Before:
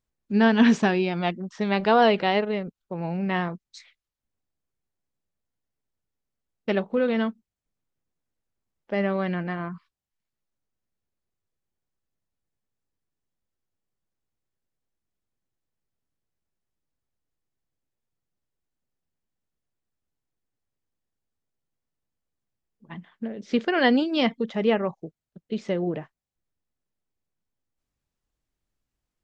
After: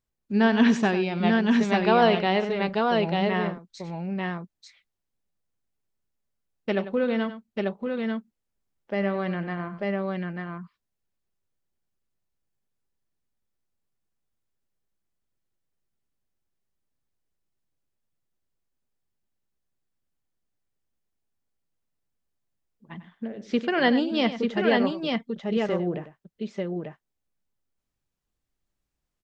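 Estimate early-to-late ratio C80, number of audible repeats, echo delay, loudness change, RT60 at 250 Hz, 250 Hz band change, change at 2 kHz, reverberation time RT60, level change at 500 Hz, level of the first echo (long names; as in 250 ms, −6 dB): no reverb audible, 2, 96 ms, −1.0 dB, no reverb audible, +0.5 dB, +0.5 dB, no reverb audible, +0.5 dB, −12.5 dB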